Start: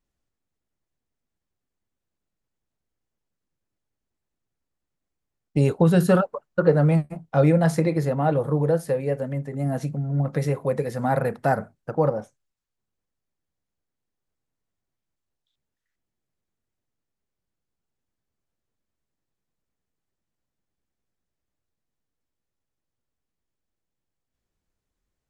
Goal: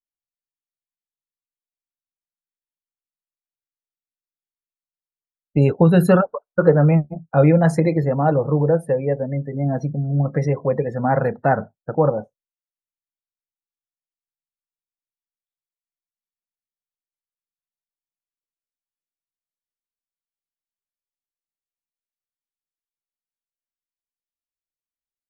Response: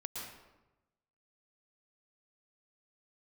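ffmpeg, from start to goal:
-af "afftdn=noise_reduction=32:noise_floor=-38,volume=4dB"

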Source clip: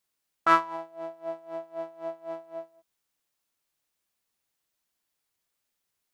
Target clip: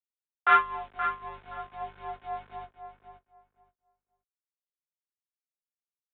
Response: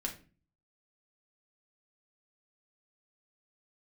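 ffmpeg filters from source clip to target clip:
-filter_complex "[0:a]highpass=frequency=830:poles=1,afreqshift=79,aeval=exprs='val(0)+0.00126*(sin(2*PI*50*n/s)+sin(2*PI*2*50*n/s)/2+sin(2*PI*3*50*n/s)/3+sin(2*PI*4*50*n/s)/4+sin(2*PI*5*50*n/s)/5)':channel_layout=same,aeval=exprs='val(0)*gte(abs(val(0)),0.00355)':channel_layout=same,flanger=delay=19.5:depth=2:speed=1.5,afreqshift=-18,asplit=2[link_01][link_02];[link_02]adelay=523,lowpass=frequency=2100:poles=1,volume=-8dB,asplit=2[link_03][link_04];[link_04]adelay=523,lowpass=frequency=2100:poles=1,volume=0.2,asplit=2[link_05][link_06];[link_06]adelay=523,lowpass=frequency=2100:poles=1,volume=0.2[link_07];[link_03][link_05][link_07]amix=inputs=3:normalize=0[link_08];[link_01][link_08]amix=inputs=2:normalize=0,aresample=8000,aresample=44100,volume=5.5dB"

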